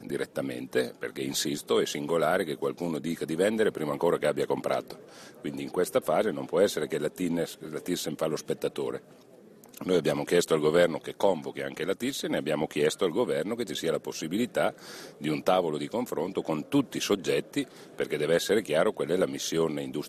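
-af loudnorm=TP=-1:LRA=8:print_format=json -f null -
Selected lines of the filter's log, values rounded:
"input_i" : "-28.8",
"input_tp" : "-10.7",
"input_lra" : "1.6",
"input_thresh" : "-39.0",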